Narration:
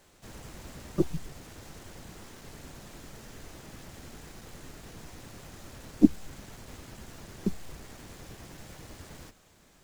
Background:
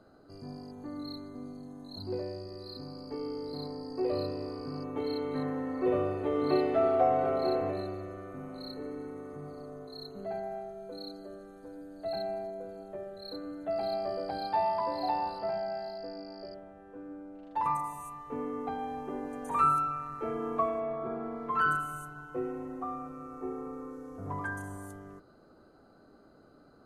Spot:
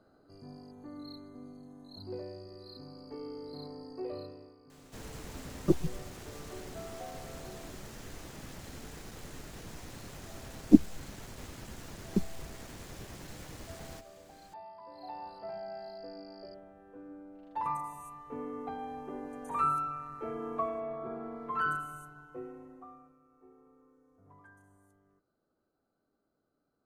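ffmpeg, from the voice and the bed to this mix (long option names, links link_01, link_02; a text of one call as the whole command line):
ffmpeg -i stem1.wav -i stem2.wav -filter_complex "[0:a]adelay=4700,volume=0.5dB[link_01];[1:a]volume=10.5dB,afade=type=out:start_time=3.82:duration=0.75:silence=0.188365,afade=type=in:start_time=14.8:duration=1.33:silence=0.158489,afade=type=out:start_time=21.67:duration=1.53:silence=0.125893[link_02];[link_01][link_02]amix=inputs=2:normalize=0" out.wav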